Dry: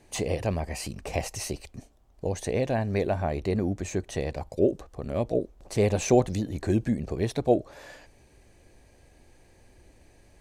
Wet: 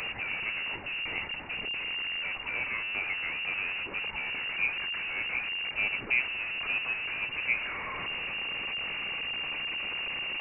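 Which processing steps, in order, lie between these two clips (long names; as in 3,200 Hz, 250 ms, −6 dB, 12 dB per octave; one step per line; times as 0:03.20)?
linear delta modulator 64 kbit/s, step −21 dBFS
voice inversion scrambler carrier 2,800 Hz
level −8 dB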